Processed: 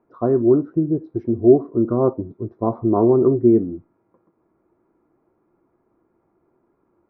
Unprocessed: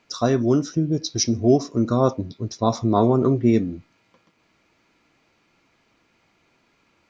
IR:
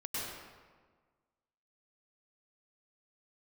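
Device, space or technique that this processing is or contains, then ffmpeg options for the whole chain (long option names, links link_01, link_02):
under water: -af "lowpass=frequency=1200:width=0.5412,lowpass=frequency=1200:width=1.3066,equalizer=frequency=360:width_type=o:width=0.43:gain=11,volume=-2.5dB"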